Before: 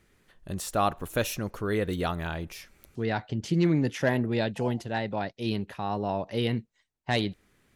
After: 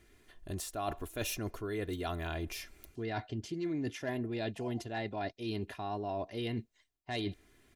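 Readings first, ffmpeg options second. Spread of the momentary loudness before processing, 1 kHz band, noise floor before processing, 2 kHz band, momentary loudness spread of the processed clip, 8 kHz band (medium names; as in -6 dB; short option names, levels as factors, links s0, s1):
9 LU, -8.5 dB, -72 dBFS, -9.0 dB, 5 LU, -4.5 dB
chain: -af "equalizer=f=1200:w=1.9:g=-3.5,aecho=1:1:2.9:0.57,areverse,acompressor=threshold=0.02:ratio=6,areverse"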